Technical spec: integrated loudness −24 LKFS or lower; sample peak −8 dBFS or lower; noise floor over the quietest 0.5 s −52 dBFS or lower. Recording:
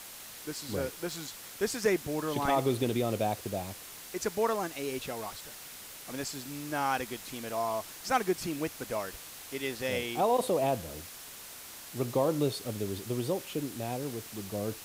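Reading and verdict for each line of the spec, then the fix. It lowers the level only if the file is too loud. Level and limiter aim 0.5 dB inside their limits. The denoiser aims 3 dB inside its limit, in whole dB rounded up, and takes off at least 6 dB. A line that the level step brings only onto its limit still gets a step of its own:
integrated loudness −33.0 LKFS: in spec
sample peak −15.5 dBFS: in spec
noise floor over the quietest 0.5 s −47 dBFS: out of spec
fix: broadband denoise 8 dB, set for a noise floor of −47 dBFS

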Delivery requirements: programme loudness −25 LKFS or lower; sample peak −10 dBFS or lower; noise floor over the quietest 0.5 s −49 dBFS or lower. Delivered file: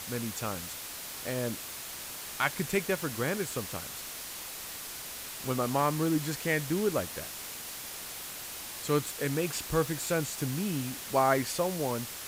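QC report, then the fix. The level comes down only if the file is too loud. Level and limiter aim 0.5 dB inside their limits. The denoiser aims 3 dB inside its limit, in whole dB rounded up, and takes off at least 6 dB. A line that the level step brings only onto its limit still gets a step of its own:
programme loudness −32.0 LKFS: in spec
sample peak −12.0 dBFS: in spec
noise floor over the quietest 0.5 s −41 dBFS: out of spec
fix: broadband denoise 11 dB, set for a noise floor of −41 dBFS

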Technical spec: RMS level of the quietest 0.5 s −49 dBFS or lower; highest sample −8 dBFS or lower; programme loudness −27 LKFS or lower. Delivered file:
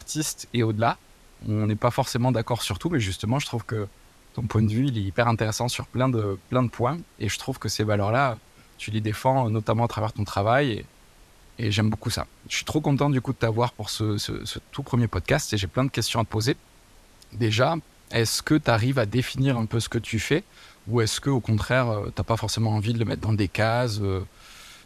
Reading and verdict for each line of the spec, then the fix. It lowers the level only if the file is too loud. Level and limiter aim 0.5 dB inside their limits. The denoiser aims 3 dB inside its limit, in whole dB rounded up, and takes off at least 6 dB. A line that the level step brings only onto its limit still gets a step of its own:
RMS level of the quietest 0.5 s −53 dBFS: in spec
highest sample −6.0 dBFS: out of spec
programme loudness −25.0 LKFS: out of spec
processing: level −2.5 dB

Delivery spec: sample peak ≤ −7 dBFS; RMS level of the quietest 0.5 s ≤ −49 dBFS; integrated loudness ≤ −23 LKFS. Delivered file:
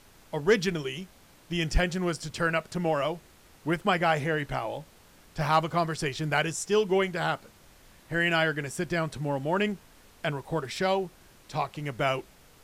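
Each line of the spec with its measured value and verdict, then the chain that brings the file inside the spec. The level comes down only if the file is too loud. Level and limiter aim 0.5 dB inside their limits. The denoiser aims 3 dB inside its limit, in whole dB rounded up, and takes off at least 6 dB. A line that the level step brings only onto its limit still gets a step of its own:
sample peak −12.0 dBFS: in spec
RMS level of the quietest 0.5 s −56 dBFS: in spec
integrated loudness −28.5 LKFS: in spec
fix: no processing needed

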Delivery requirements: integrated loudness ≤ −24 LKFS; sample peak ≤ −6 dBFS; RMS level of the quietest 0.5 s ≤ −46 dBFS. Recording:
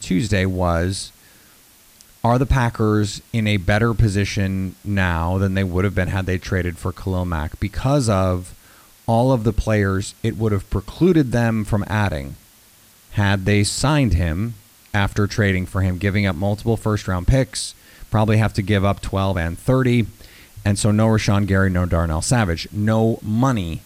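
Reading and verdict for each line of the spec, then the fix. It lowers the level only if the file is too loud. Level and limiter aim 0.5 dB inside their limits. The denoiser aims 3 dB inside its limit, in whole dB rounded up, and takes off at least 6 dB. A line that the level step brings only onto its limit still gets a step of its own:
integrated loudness −20.0 LKFS: out of spec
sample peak −5.5 dBFS: out of spec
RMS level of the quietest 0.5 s −50 dBFS: in spec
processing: level −4.5 dB

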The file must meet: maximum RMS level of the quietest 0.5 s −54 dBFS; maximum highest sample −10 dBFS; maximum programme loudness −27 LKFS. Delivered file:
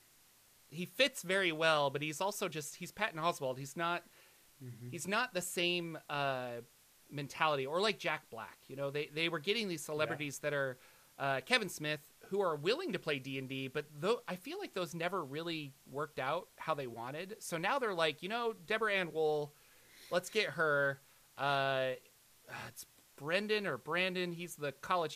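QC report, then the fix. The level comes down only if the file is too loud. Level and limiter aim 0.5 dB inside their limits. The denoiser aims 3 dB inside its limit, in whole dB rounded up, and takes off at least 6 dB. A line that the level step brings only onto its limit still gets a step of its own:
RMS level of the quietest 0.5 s −66 dBFS: in spec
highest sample −13.0 dBFS: in spec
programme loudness −36.5 LKFS: in spec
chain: no processing needed

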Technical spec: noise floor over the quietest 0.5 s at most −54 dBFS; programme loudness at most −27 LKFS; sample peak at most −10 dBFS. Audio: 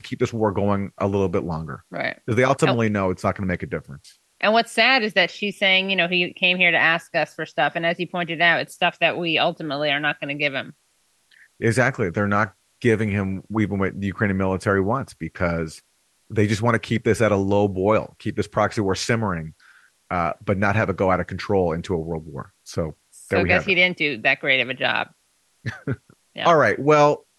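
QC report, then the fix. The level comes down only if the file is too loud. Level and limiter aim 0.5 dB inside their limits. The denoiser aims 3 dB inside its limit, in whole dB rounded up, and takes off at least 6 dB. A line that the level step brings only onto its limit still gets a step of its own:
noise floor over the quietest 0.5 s −65 dBFS: in spec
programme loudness −21.0 LKFS: out of spec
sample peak −5.0 dBFS: out of spec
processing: level −6.5 dB

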